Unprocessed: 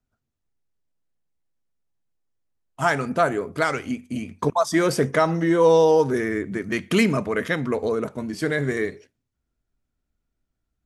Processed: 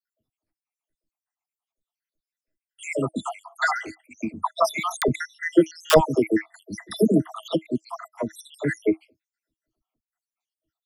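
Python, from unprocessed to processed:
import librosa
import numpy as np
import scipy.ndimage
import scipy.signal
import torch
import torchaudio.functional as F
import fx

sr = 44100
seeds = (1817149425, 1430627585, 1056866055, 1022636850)

y = fx.spec_dropout(x, sr, seeds[0], share_pct=81)
y = fx.low_shelf(y, sr, hz=110.0, db=-11.0)
y = (np.mod(10.0 ** (12.5 / 20.0) * y + 1.0, 2.0) - 1.0) / 10.0 ** (12.5 / 20.0)
y = fx.small_body(y, sr, hz=(320.0, 630.0, 2000.0, 3500.0), ring_ms=95, db=11)
y = fx.dispersion(y, sr, late='lows', ms=70.0, hz=560.0)
y = y * librosa.db_to_amplitude(4.5)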